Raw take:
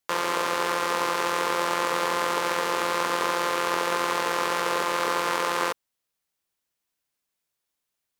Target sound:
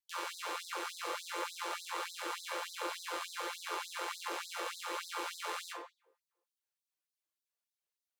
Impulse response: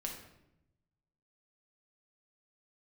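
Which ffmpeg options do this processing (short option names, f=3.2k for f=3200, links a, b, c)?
-filter_complex "[0:a]aphaser=in_gain=1:out_gain=1:delay=1.9:decay=0.33:speed=1.4:type=triangular[a];[1:a]atrim=start_sample=2205,asetrate=66150,aresample=44100[b];[a][b]afir=irnorm=-1:irlink=0,afftfilt=real='re*gte(b*sr/1024,280*pow(3700/280,0.5+0.5*sin(2*PI*3.4*pts/sr)))':imag='im*gte(b*sr/1024,280*pow(3700/280,0.5+0.5*sin(2*PI*3.4*pts/sr)))':win_size=1024:overlap=0.75,volume=-7dB"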